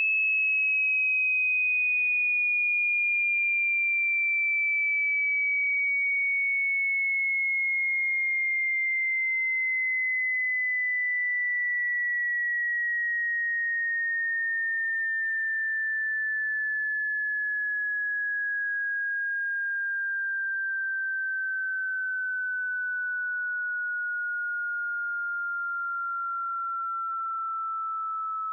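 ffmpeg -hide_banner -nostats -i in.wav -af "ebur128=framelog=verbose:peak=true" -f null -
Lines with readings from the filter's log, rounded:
Integrated loudness:
  I:         -25.3 LUFS
  Threshold: -35.3 LUFS
Loudness range:
  LRA:         7.0 LU
  Threshold: -45.4 LUFS
  LRA low:   -29.4 LUFS
  LRA high:  -22.4 LUFS
True peak:
  Peak:      -21.5 dBFS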